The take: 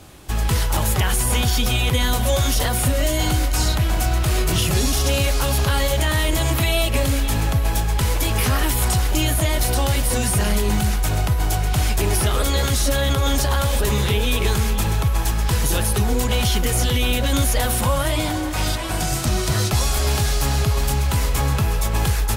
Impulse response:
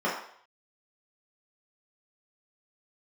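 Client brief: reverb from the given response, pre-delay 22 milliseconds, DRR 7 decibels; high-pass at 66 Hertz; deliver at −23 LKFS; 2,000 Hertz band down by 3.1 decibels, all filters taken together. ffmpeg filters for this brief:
-filter_complex "[0:a]highpass=66,equalizer=frequency=2000:width_type=o:gain=-4,asplit=2[link_01][link_02];[1:a]atrim=start_sample=2205,adelay=22[link_03];[link_02][link_03]afir=irnorm=-1:irlink=0,volume=-19.5dB[link_04];[link_01][link_04]amix=inputs=2:normalize=0,volume=-1.5dB"

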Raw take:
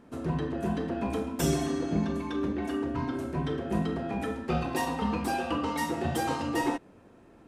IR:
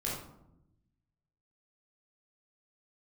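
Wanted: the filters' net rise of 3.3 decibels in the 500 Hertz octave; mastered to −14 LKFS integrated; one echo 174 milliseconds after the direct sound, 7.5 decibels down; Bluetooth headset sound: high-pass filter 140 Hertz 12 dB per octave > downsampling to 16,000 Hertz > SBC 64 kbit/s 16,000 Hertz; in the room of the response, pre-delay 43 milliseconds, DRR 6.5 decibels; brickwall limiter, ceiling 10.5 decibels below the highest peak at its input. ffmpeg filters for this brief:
-filter_complex "[0:a]equalizer=frequency=500:width_type=o:gain=4.5,alimiter=limit=-23dB:level=0:latency=1,aecho=1:1:174:0.422,asplit=2[link_01][link_02];[1:a]atrim=start_sample=2205,adelay=43[link_03];[link_02][link_03]afir=irnorm=-1:irlink=0,volume=-10.5dB[link_04];[link_01][link_04]amix=inputs=2:normalize=0,highpass=140,aresample=16000,aresample=44100,volume=16.5dB" -ar 16000 -c:a sbc -b:a 64k

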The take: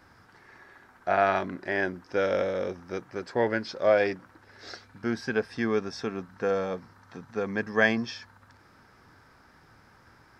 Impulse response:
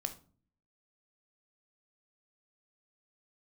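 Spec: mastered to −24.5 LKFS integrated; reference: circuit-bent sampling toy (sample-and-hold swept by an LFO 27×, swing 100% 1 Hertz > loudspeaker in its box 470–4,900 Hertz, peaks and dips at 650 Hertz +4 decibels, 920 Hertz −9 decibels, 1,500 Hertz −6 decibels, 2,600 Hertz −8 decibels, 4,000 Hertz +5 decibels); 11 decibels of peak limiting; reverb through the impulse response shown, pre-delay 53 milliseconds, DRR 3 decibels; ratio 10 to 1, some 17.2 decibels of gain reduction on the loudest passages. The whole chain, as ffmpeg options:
-filter_complex "[0:a]acompressor=threshold=-34dB:ratio=10,alimiter=level_in=8.5dB:limit=-24dB:level=0:latency=1,volume=-8.5dB,asplit=2[link_01][link_02];[1:a]atrim=start_sample=2205,adelay=53[link_03];[link_02][link_03]afir=irnorm=-1:irlink=0,volume=-3dB[link_04];[link_01][link_04]amix=inputs=2:normalize=0,acrusher=samples=27:mix=1:aa=0.000001:lfo=1:lforange=27:lforate=1,highpass=470,equalizer=frequency=650:width_type=q:width=4:gain=4,equalizer=frequency=920:width_type=q:width=4:gain=-9,equalizer=frequency=1500:width_type=q:width=4:gain=-6,equalizer=frequency=2600:width_type=q:width=4:gain=-8,equalizer=frequency=4000:width_type=q:width=4:gain=5,lowpass=frequency=4900:width=0.5412,lowpass=frequency=4900:width=1.3066,volume=21.5dB"

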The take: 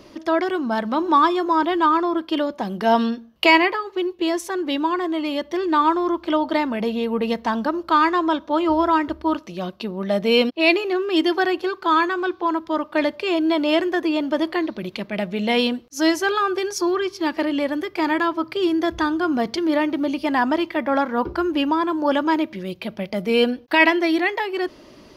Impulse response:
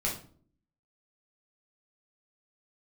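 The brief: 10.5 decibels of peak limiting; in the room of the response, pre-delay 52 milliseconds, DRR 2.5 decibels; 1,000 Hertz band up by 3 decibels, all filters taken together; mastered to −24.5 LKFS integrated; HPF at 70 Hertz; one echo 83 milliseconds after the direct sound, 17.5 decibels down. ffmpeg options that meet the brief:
-filter_complex "[0:a]highpass=70,equalizer=frequency=1000:width_type=o:gain=3.5,alimiter=limit=-12dB:level=0:latency=1,aecho=1:1:83:0.133,asplit=2[link_01][link_02];[1:a]atrim=start_sample=2205,adelay=52[link_03];[link_02][link_03]afir=irnorm=-1:irlink=0,volume=-8.5dB[link_04];[link_01][link_04]amix=inputs=2:normalize=0,volume=-4.5dB"

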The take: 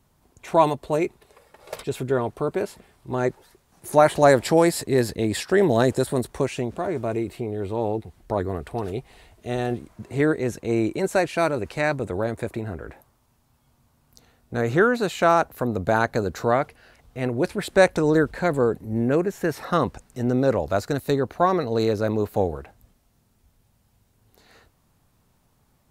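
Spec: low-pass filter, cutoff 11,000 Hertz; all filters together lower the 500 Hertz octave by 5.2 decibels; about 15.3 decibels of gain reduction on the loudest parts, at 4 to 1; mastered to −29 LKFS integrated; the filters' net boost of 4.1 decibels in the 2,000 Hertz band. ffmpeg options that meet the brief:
ffmpeg -i in.wav -af "lowpass=11000,equalizer=frequency=500:width_type=o:gain=-7,equalizer=frequency=2000:width_type=o:gain=6,acompressor=threshold=-32dB:ratio=4,volume=6.5dB" out.wav

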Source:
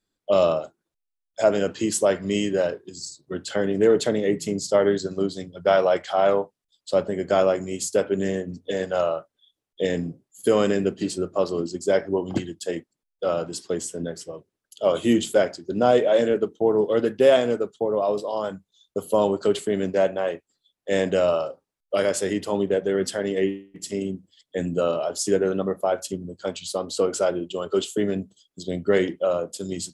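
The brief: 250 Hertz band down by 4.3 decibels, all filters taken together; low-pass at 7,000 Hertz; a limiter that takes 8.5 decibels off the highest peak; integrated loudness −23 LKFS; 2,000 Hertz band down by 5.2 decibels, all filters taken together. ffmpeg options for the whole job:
ffmpeg -i in.wav -af "lowpass=7000,equalizer=frequency=250:width_type=o:gain=-6,equalizer=frequency=2000:width_type=o:gain=-7,volume=5.5dB,alimiter=limit=-11dB:level=0:latency=1" out.wav

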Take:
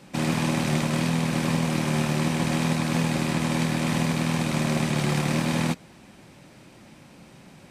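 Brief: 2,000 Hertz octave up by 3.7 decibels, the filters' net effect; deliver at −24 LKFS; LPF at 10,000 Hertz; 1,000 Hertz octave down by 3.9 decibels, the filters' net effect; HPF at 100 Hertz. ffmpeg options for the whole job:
ffmpeg -i in.wav -af "highpass=100,lowpass=10000,equalizer=frequency=1000:width_type=o:gain=-6.5,equalizer=frequency=2000:width_type=o:gain=6,volume=1dB" out.wav

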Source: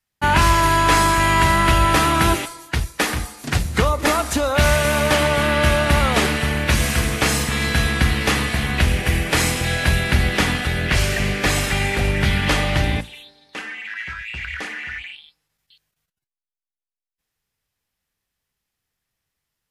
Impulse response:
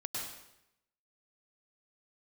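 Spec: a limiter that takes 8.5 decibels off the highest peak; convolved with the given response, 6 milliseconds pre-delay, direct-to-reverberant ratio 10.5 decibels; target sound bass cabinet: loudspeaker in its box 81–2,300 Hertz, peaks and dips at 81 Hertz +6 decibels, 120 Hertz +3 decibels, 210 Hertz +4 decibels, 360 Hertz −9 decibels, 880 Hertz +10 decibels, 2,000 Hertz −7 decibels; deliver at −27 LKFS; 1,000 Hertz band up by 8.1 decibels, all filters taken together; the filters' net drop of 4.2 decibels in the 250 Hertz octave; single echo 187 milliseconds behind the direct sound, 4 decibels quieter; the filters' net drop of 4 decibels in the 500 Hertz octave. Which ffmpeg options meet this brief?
-filter_complex "[0:a]equalizer=frequency=250:width_type=o:gain=-6.5,equalizer=frequency=500:width_type=o:gain=-6,equalizer=frequency=1000:width_type=o:gain=5,alimiter=limit=-11.5dB:level=0:latency=1,aecho=1:1:187:0.631,asplit=2[link_01][link_02];[1:a]atrim=start_sample=2205,adelay=6[link_03];[link_02][link_03]afir=irnorm=-1:irlink=0,volume=-12.5dB[link_04];[link_01][link_04]amix=inputs=2:normalize=0,highpass=frequency=81:width=0.5412,highpass=frequency=81:width=1.3066,equalizer=frequency=81:width_type=q:width=4:gain=6,equalizer=frequency=120:width_type=q:width=4:gain=3,equalizer=frequency=210:width_type=q:width=4:gain=4,equalizer=frequency=360:width_type=q:width=4:gain=-9,equalizer=frequency=880:width_type=q:width=4:gain=10,equalizer=frequency=2000:width_type=q:width=4:gain=-7,lowpass=frequency=2300:width=0.5412,lowpass=frequency=2300:width=1.3066,volume=-8.5dB"

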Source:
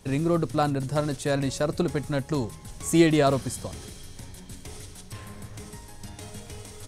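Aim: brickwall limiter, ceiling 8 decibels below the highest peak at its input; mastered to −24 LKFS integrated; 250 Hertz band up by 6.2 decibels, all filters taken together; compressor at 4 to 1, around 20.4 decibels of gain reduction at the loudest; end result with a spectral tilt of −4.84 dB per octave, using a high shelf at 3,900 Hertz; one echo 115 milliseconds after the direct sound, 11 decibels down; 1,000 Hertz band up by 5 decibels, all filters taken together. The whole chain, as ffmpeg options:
ffmpeg -i in.wav -af "equalizer=frequency=250:width_type=o:gain=8.5,equalizer=frequency=1000:width_type=o:gain=6.5,highshelf=frequency=3900:gain=4,acompressor=threshold=-34dB:ratio=4,alimiter=level_in=5dB:limit=-24dB:level=0:latency=1,volume=-5dB,aecho=1:1:115:0.282,volume=15dB" out.wav

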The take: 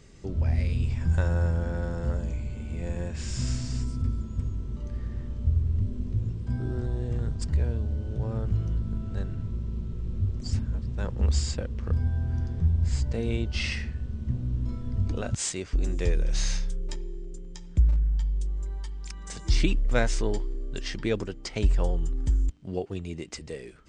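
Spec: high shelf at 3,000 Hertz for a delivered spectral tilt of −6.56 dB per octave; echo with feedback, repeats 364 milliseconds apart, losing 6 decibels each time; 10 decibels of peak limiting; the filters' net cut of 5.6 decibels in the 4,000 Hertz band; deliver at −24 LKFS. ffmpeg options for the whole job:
ffmpeg -i in.wav -af "highshelf=frequency=3000:gain=-3.5,equalizer=frequency=4000:width_type=o:gain=-4.5,alimiter=limit=-20.5dB:level=0:latency=1,aecho=1:1:364|728|1092|1456|1820|2184:0.501|0.251|0.125|0.0626|0.0313|0.0157,volume=6.5dB" out.wav

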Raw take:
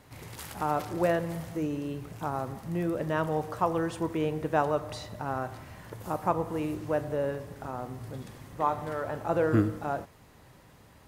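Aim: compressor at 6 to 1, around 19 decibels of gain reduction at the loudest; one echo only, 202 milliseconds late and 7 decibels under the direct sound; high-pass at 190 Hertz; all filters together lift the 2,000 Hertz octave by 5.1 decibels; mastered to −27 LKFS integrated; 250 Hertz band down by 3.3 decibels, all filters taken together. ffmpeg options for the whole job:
ffmpeg -i in.wav -af "highpass=190,equalizer=frequency=250:width_type=o:gain=-3.5,equalizer=frequency=2000:width_type=o:gain=7,acompressor=threshold=-42dB:ratio=6,aecho=1:1:202:0.447,volume=18dB" out.wav

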